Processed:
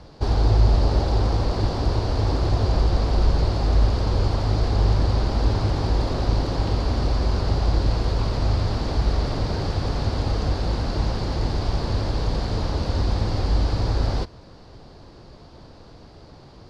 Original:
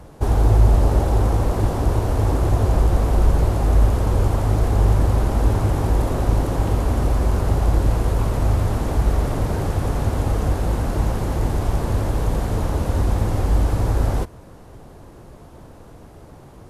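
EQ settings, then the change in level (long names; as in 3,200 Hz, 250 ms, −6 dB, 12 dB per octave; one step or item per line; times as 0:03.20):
low-pass with resonance 4,600 Hz, resonance Q 5.6
−3.0 dB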